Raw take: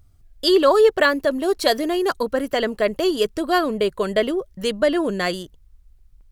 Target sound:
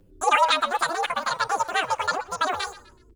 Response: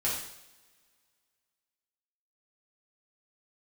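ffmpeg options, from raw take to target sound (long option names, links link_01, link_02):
-filter_complex "[0:a]bandreject=frequency=437.8:width_type=h:width=4,bandreject=frequency=875.6:width_type=h:width=4,bandreject=frequency=1313.4:width_type=h:width=4,bandreject=frequency=1751.2:width_type=h:width=4,bandreject=frequency=2189:width_type=h:width=4,bandreject=frequency=2626.8:width_type=h:width=4,bandreject=frequency=3064.6:width_type=h:width=4,bandreject=frequency=3502.4:width_type=h:width=4,bandreject=frequency=3940.2:width_type=h:width=4,bandreject=frequency=4378:width_type=h:width=4,bandreject=frequency=4815.8:width_type=h:width=4,bandreject=frequency=5253.6:width_type=h:width=4,bandreject=frequency=5691.4:width_type=h:width=4,bandreject=frequency=6129.2:width_type=h:width=4,bandreject=frequency=6567:width_type=h:width=4,bandreject=frequency=7004.8:width_type=h:width=4,bandreject=frequency=7442.6:width_type=h:width=4,bandreject=frequency=7880.4:width_type=h:width=4,bandreject=frequency=8318.2:width_type=h:width=4,bandreject=frequency=8756:width_type=h:width=4,bandreject=frequency=9193.8:width_type=h:width=4,bandreject=frequency=9631.6:width_type=h:width=4,bandreject=frequency=10069.4:width_type=h:width=4,bandreject=frequency=10507.2:width_type=h:width=4,bandreject=frequency=10945:width_type=h:width=4,bandreject=frequency=11382.8:width_type=h:width=4,bandreject=frequency=11820.6:width_type=h:width=4,bandreject=frequency=12258.4:width_type=h:width=4,bandreject=frequency=12696.2:width_type=h:width=4,bandreject=frequency=13134:width_type=h:width=4,bandreject=frequency=13571.8:width_type=h:width=4,bandreject=frequency=14009.6:width_type=h:width=4,bandreject=frequency=14447.4:width_type=h:width=4,bandreject=frequency=14885.2:width_type=h:width=4,bandreject=frequency=15323:width_type=h:width=4,bandreject=frequency=15760.8:width_type=h:width=4,asetrate=48091,aresample=44100,atempo=0.917004,acrossover=split=290[link_01][link_02];[link_01]acompressor=threshold=-44dB:ratio=6[link_03];[link_03][link_02]amix=inputs=2:normalize=0,tremolo=f=170:d=0.889,acrossover=split=3500[link_04][link_05];[link_05]acompressor=threshold=-46dB:ratio=4:attack=1:release=60[link_06];[link_04][link_06]amix=inputs=2:normalize=0,asetrate=88200,aresample=44100,asplit=4[link_07][link_08][link_09][link_10];[link_08]adelay=125,afreqshift=73,volume=-19dB[link_11];[link_09]adelay=250,afreqshift=146,volume=-27.2dB[link_12];[link_10]adelay=375,afreqshift=219,volume=-35.4dB[link_13];[link_07][link_11][link_12][link_13]amix=inputs=4:normalize=0,asplit=2[link_14][link_15];[link_15]adelay=7.5,afreqshift=-0.49[link_16];[link_14][link_16]amix=inputs=2:normalize=1,volume=3.5dB"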